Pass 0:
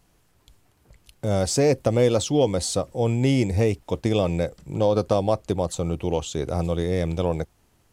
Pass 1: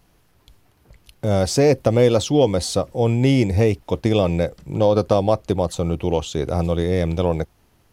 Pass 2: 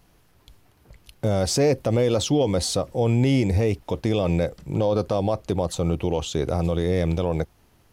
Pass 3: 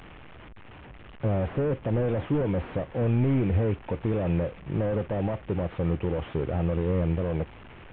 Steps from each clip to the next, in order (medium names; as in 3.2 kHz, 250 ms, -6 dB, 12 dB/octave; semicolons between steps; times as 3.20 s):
peaking EQ 7.8 kHz -6.5 dB 0.56 oct; trim +4 dB
peak limiter -11.5 dBFS, peak gain reduction 8.5 dB
one-bit delta coder 16 kbps, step -37.5 dBFS; trim -2.5 dB